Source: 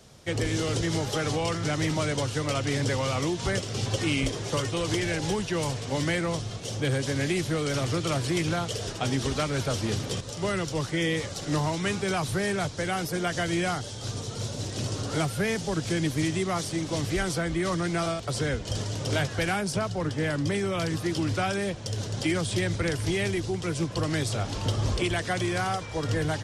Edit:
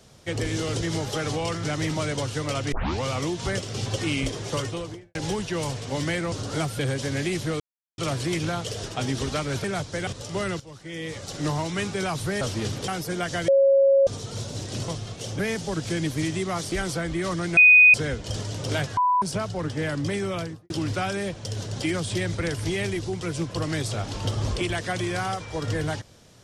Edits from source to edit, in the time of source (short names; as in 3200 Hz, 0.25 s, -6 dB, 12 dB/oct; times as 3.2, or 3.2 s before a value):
2.72 tape start 0.30 s
4.59–5.15 studio fade out
6.32–6.83 swap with 14.92–15.39
7.64–8.02 mute
9.68–10.15 swap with 12.49–12.92
10.68–11.39 fade in quadratic, from -15.5 dB
13.52–14.11 bleep 548 Hz -14 dBFS
16.72–17.13 cut
17.98–18.35 bleep 2490 Hz -9.5 dBFS
19.38–19.63 bleep 993 Hz -17.5 dBFS
20.71–21.11 studio fade out